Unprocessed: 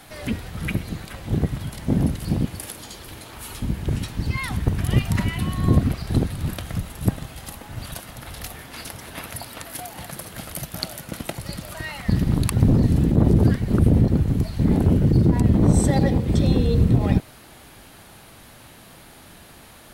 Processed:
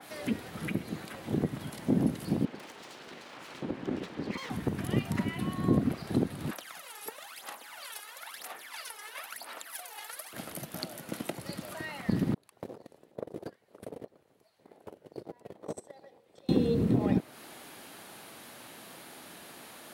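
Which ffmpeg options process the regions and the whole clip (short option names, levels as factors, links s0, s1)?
-filter_complex "[0:a]asettb=1/sr,asplit=3[s0][s1][s2];[s0]atrim=end=2.454[s3];[s1]atrim=start=2.45:end=4.5,asetpts=PTS-STARTPTS,afade=t=in:d=0.004:c=qsin,afade=t=out:st=2.046:d=0.004:c=qsin,lowpass=3400,aeval=exprs='abs(val(0))':c=same[s4];[s2]atrim=start=4.496[s5];[s3][s4]acrossfade=d=0.004:c1=hsin:c2=qsin[s6];[s6][s5]acrossfade=d=0.004:c1=qsin:c2=hsin,asettb=1/sr,asplit=3[s7][s8][s9];[s7]atrim=end=6.514[s10];[s8]atrim=start=6.51:end=10.33,asetpts=PTS-STARTPTS,afade=t=in:d=0.004:c=qsin,afade=t=out:st=3.816:d=0.004:c=qsin,highpass=1000,aphaser=in_gain=1:out_gain=1:delay=2.4:decay=0.73:speed=1:type=sinusoidal[s11];[s9]atrim=start=10.326[s12];[s10][s11]acrossfade=d=0.004:c1=hsin:c2=qsin[s13];[s13][s12]acrossfade=d=0.004:c1=qsin:c2=hsin,asettb=1/sr,asplit=3[s14][s15][s16];[s14]atrim=end=12.344[s17];[s15]atrim=start=12.34:end=16.49,asetpts=PTS-STARTPTS,afade=t=in:d=0.004:c=qsin,afade=t=out:st=4.146:d=0.004:c=qsin,agate=range=0.0316:threshold=0.224:ratio=16:release=100:detection=peak,lowshelf=f=360:t=q:w=1.5:g=-12[s18];[s16]atrim=start=16.486[s19];[s17][s18]acrossfade=d=0.004:c1=hsin:c2=qsin[s20];[s20][s19]acrossfade=d=0.004:c1=qsin:c2=hsin,acrossover=split=440[s21][s22];[s22]acompressor=threshold=0.00355:ratio=1.5[s23];[s21][s23]amix=inputs=2:normalize=0,highpass=250,adynamicequalizer=threshold=0.00355:dfrequency=2500:dqfactor=0.7:tfrequency=2500:tqfactor=0.7:attack=5:release=100:ratio=0.375:range=2.5:mode=cutabove:tftype=highshelf"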